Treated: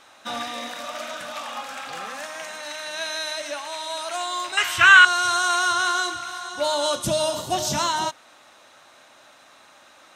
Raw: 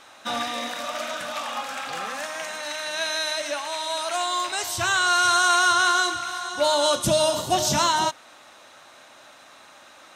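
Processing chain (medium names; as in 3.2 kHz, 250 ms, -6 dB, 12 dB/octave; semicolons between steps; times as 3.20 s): 4.57–5.05 s: high-order bell 1.9 kHz +16 dB; trim -2.5 dB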